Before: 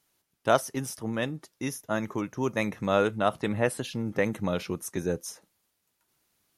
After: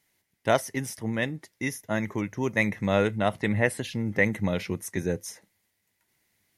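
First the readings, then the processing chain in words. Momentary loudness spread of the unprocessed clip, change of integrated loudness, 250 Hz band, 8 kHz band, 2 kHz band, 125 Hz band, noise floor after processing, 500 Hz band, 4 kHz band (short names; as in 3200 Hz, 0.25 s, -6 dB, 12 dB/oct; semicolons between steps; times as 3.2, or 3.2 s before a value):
9 LU, +1.5 dB, +2.0 dB, 0.0 dB, +5.5 dB, +4.0 dB, -76 dBFS, 0.0 dB, +0.5 dB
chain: thirty-one-band EQ 100 Hz +8 dB, 200 Hz +4 dB, 1250 Hz -7 dB, 2000 Hz +12 dB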